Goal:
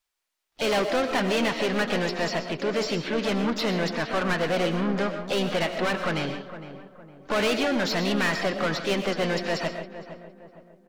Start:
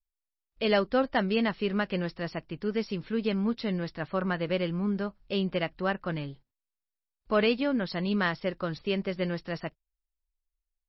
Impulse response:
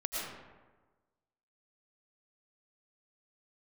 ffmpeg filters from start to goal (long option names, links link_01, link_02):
-filter_complex "[0:a]asplit=2[link_01][link_02];[link_02]highpass=frequency=720:poles=1,volume=29dB,asoftclip=type=tanh:threshold=-12.5dB[link_03];[link_01][link_03]amix=inputs=2:normalize=0,lowpass=frequency=4800:poles=1,volume=-6dB,asplit=2[link_04][link_05];[link_05]asetrate=58866,aresample=44100,atempo=0.749154,volume=-9dB[link_06];[link_04][link_06]amix=inputs=2:normalize=0,asplit=2[link_07][link_08];[link_08]adelay=460,lowpass=frequency=1400:poles=1,volume=-11.5dB,asplit=2[link_09][link_10];[link_10]adelay=460,lowpass=frequency=1400:poles=1,volume=0.43,asplit=2[link_11][link_12];[link_12]adelay=460,lowpass=frequency=1400:poles=1,volume=0.43,asplit=2[link_13][link_14];[link_14]adelay=460,lowpass=frequency=1400:poles=1,volume=0.43[link_15];[link_07][link_09][link_11][link_13][link_15]amix=inputs=5:normalize=0,asplit=2[link_16][link_17];[1:a]atrim=start_sample=2205,afade=type=out:start_time=0.22:duration=0.01,atrim=end_sample=10143[link_18];[link_17][link_18]afir=irnorm=-1:irlink=0,volume=-6dB[link_19];[link_16][link_19]amix=inputs=2:normalize=0,volume=-8.5dB"